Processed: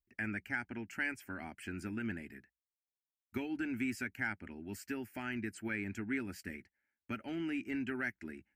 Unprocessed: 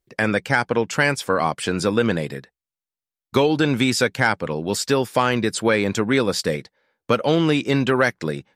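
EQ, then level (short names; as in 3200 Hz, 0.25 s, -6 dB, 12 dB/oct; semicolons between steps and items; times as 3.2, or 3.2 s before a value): passive tone stack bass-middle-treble 6-0-2; band shelf 7100 Hz -12.5 dB; fixed phaser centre 730 Hz, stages 8; +5.0 dB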